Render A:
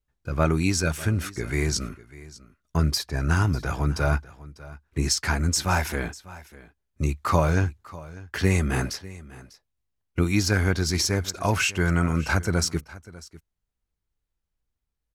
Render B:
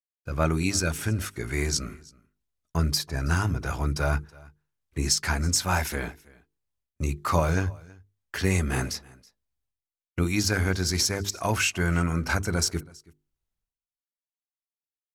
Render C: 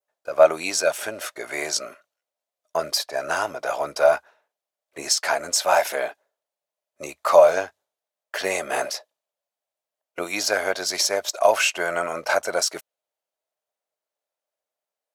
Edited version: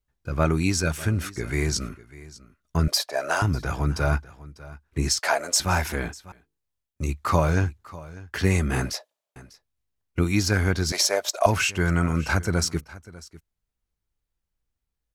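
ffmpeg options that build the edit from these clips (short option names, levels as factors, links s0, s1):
-filter_complex "[2:a]asplit=4[s0][s1][s2][s3];[0:a]asplit=6[s4][s5][s6][s7][s8][s9];[s4]atrim=end=2.882[s10];[s0]atrim=start=2.878:end=3.422[s11];[s5]atrim=start=3.418:end=5.192[s12];[s1]atrim=start=5.188:end=5.602[s13];[s6]atrim=start=5.598:end=6.322[s14];[1:a]atrim=start=6.318:end=7.092[s15];[s7]atrim=start=7.088:end=8.932[s16];[s2]atrim=start=8.928:end=9.362[s17];[s8]atrim=start=9.358:end=10.922[s18];[s3]atrim=start=10.918:end=11.462[s19];[s9]atrim=start=11.458[s20];[s10][s11]acrossfade=d=0.004:c1=hsin:c2=hsin[s21];[s21][s12]acrossfade=d=0.004:c1=hsin:c2=hsin[s22];[s22][s13]acrossfade=d=0.004:c1=hsin:c2=hsin[s23];[s23][s14]acrossfade=d=0.004:c1=hsin:c2=hsin[s24];[s24][s15]acrossfade=d=0.004:c1=hsin:c2=hsin[s25];[s25][s16]acrossfade=d=0.004:c1=hsin:c2=hsin[s26];[s26][s17]acrossfade=d=0.004:c1=hsin:c2=hsin[s27];[s27][s18]acrossfade=d=0.004:c1=hsin:c2=hsin[s28];[s28][s19]acrossfade=d=0.004:c1=hsin:c2=hsin[s29];[s29][s20]acrossfade=d=0.004:c1=hsin:c2=hsin"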